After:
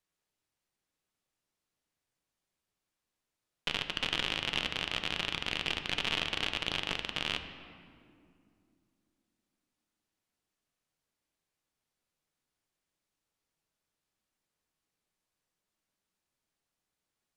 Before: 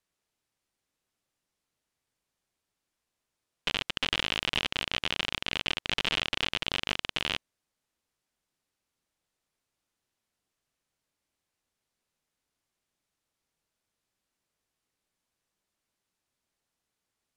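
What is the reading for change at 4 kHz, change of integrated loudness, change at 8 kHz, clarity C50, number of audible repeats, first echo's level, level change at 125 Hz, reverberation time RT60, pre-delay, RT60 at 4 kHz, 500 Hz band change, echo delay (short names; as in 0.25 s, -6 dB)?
-3.0 dB, -3.0 dB, -3.5 dB, 8.5 dB, none, none, -2.0 dB, 2.4 s, 5 ms, 1.4 s, -2.5 dB, none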